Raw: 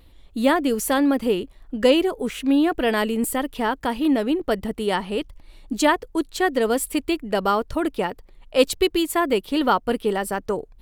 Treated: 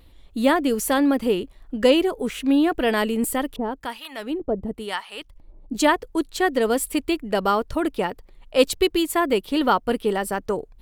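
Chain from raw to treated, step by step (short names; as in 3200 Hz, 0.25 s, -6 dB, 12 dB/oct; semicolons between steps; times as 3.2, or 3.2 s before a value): 3.56–5.75 harmonic tremolo 1 Hz, depth 100%, crossover 840 Hz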